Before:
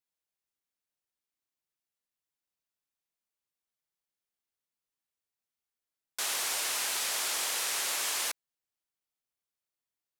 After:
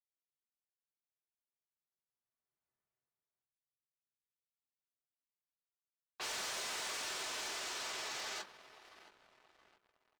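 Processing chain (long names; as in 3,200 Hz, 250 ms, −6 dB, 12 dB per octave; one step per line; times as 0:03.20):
source passing by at 0:02.78, 12 m/s, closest 3.4 metres
low-pass that shuts in the quiet parts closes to 2,100 Hz, open at −51.5 dBFS
feedback echo with a low-pass in the loop 678 ms, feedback 64%, low-pass 3,900 Hz, level −17 dB
gain on a spectral selection 0:03.44–0:04.76, 250–4,800 Hz −21 dB
convolution reverb RT60 0.25 s, pre-delay 3 ms, DRR 3.5 dB
gate on every frequency bin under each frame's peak −20 dB strong
pitch shifter −5 semitones
leveller curve on the samples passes 1
high-shelf EQ 12,000 Hz −11 dB
leveller curve on the samples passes 2
level +7 dB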